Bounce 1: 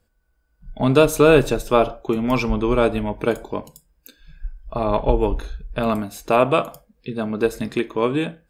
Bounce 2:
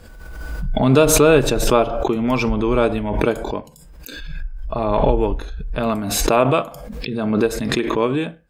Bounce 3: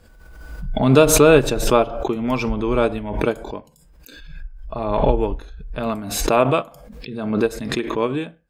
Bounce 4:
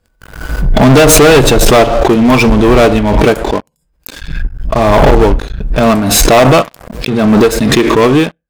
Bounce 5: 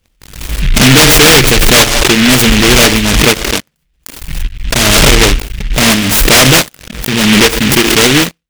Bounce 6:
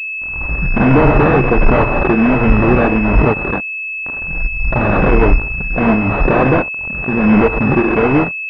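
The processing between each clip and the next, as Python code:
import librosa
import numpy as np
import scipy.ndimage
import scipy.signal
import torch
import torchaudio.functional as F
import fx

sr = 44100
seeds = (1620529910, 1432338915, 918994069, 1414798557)

y1 = fx.high_shelf(x, sr, hz=9500.0, db=-7.5)
y1 = fx.pre_swell(y1, sr, db_per_s=34.0)
y2 = fx.upward_expand(y1, sr, threshold_db=-29.0, expansion=1.5)
y2 = y2 * 10.0 ** (1.5 / 20.0)
y3 = fx.leveller(y2, sr, passes=5)
y4 = fx.noise_mod_delay(y3, sr, seeds[0], noise_hz=2400.0, depth_ms=0.38)
y5 = fx.spec_ripple(y4, sr, per_octave=1.8, drift_hz=-1.4, depth_db=9)
y5 = fx.pwm(y5, sr, carrier_hz=2600.0)
y5 = y5 * 10.0 ** (-3.5 / 20.0)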